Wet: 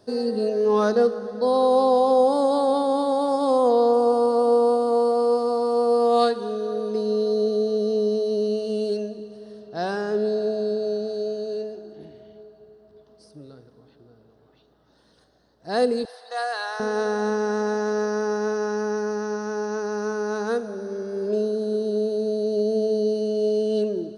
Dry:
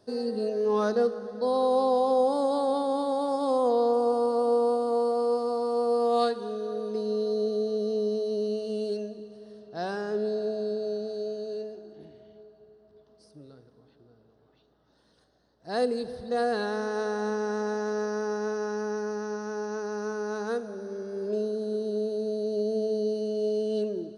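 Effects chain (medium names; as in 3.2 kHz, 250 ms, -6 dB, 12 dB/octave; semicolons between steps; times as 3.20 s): 16.05–16.80 s: high-pass 720 Hz 24 dB/octave; trim +5.5 dB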